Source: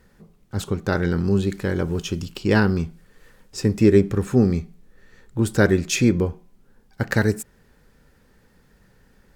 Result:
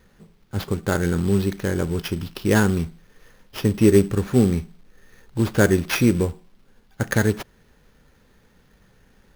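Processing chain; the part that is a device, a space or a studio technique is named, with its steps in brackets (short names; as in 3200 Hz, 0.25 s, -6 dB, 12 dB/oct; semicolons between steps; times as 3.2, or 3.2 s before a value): early companding sampler (sample-rate reducer 8200 Hz, jitter 0%; companded quantiser 6-bit)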